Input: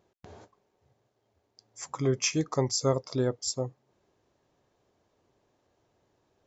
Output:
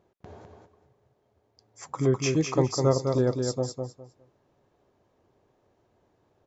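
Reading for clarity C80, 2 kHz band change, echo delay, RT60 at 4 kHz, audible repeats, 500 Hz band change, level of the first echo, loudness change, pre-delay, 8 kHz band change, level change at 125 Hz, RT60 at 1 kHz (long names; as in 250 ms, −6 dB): no reverb audible, +0.5 dB, 205 ms, no reverb audible, 3, +4.5 dB, −5.0 dB, +3.0 dB, no reverb audible, can't be measured, +5.0 dB, no reverb audible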